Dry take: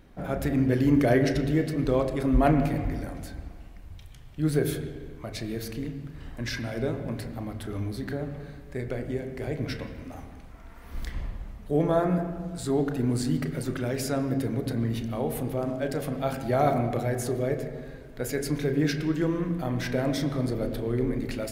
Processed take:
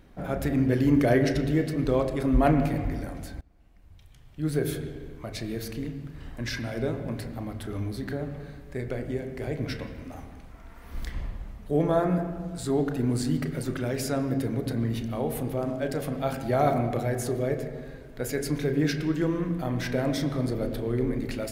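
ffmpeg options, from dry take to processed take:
-filter_complex "[0:a]asplit=2[a][b];[a]atrim=end=3.41,asetpts=PTS-STARTPTS,afade=t=out:st=3.406:d=0.004:c=hsin:silence=0.0630957[c];[b]atrim=start=3.41,asetpts=PTS-STARTPTS,afade=t=in:d=1.5:silence=0.0630957[d];[c][d]concat=n=2:v=0:a=1"

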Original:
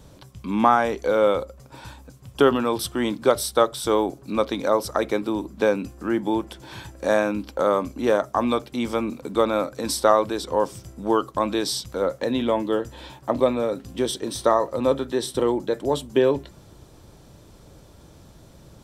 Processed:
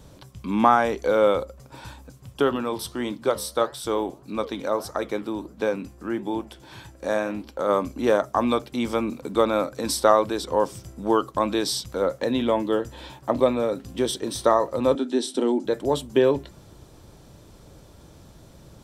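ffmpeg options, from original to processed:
-filter_complex "[0:a]asplit=3[a][b][c];[a]afade=t=out:st=2.33:d=0.02[d];[b]flanger=delay=6.3:depth=6.4:regen=-86:speed=1.6:shape=sinusoidal,afade=t=in:st=2.33:d=0.02,afade=t=out:st=7.68:d=0.02[e];[c]afade=t=in:st=7.68:d=0.02[f];[d][e][f]amix=inputs=3:normalize=0,asettb=1/sr,asplit=3[g][h][i];[g]atrim=end=14.954[j];[h]atrim=start=14.95:end=15.65,asetpts=PTS-STARTPTS,afade=t=in:d=0.004:c=qsin,afade=t=out:st=0.696:d=0.004:c=qsin,highpass=f=240:w=0.5412,highpass=f=240:w=1.3066,equalizer=f=250:t=q:w=4:g=9,equalizer=f=510:t=q:w=4:g=-6,equalizer=f=1.1k:t=q:w=4:g=-10,equalizer=f=1.9k:t=q:w=4:g=-6,lowpass=f=9.9k:w=0.5412,lowpass=f=9.9k:w=1.3066[k];[i]atrim=start=15.646[l];[j][k]acrossfade=d=0.004:c1=hsin:c2=qsin[m];[m][l]acrossfade=d=0.004:c1=qsin:c2=hsin"

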